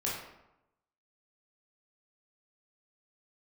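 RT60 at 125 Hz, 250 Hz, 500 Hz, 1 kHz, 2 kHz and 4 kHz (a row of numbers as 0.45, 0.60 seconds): 0.90, 0.90, 0.90, 0.90, 0.70, 0.55 seconds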